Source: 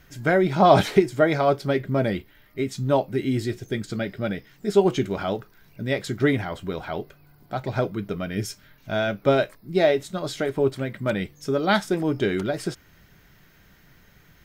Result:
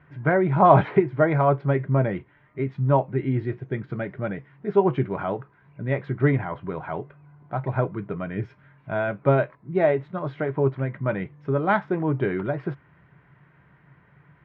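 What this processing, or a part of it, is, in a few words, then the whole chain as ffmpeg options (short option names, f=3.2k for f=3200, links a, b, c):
bass cabinet: -af "highpass=87,equalizer=f=140:t=q:w=4:g=10,equalizer=f=220:t=q:w=4:g=-4,equalizer=f=1k:t=q:w=4:g=8,lowpass=f=2.2k:w=0.5412,lowpass=f=2.2k:w=1.3066,volume=-1.5dB"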